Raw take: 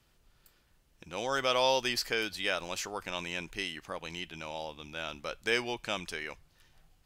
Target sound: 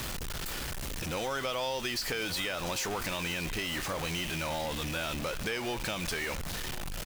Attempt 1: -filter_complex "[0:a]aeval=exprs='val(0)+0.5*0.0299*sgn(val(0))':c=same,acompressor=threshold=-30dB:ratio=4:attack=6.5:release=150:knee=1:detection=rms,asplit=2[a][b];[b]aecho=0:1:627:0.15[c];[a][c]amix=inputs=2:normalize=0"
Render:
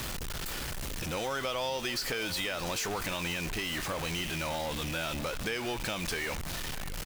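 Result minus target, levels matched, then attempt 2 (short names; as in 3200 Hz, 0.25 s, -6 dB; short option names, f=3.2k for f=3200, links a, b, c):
echo 0.446 s early
-filter_complex "[0:a]aeval=exprs='val(0)+0.5*0.0299*sgn(val(0))':c=same,acompressor=threshold=-30dB:ratio=4:attack=6.5:release=150:knee=1:detection=rms,asplit=2[a][b];[b]aecho=0:1:1073:0.15[c];[a][c]amix=inputs=2:normalize=0"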